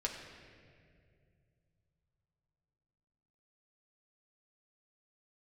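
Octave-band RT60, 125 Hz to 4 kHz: 4.2 s, 3.1 s, 2.7 s, 1.9 s, 2.0 s, 1.5 s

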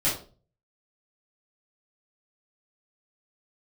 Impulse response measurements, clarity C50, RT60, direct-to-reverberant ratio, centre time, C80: 6.5 dB, 0.40 s, -9.5 dB, 32 ms, 12.0 dB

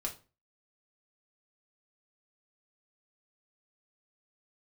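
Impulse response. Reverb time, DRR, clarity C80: 0.35 s, -1.0 dB, 19.5 dB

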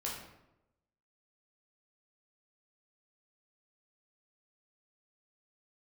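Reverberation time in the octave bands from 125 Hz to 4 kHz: 1.0 s, 0.95 s, 0.95 s, 0.85 s, 0.70 s, 0.55 s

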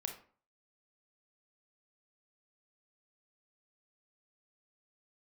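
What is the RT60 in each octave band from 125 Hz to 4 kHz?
0.50 s, 0.45 s, 0.45 s, 0.45 s, 0.35 s, 0.30 s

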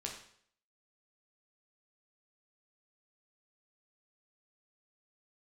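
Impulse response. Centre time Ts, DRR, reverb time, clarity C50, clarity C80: 28 ms, -0.5 dB, 0.60 s, 6.0 dB, 9.0 dB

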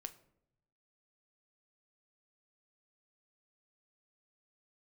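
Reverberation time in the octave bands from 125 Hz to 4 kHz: 1.2 s, 1.0 s, 0.85 s, 0.65 s, 0.55 s, 0.40 s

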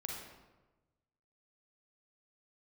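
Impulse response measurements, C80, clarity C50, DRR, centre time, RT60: 3.5 dB, 0.5 dB, -1.5 dB, 64 ms, 1.2 s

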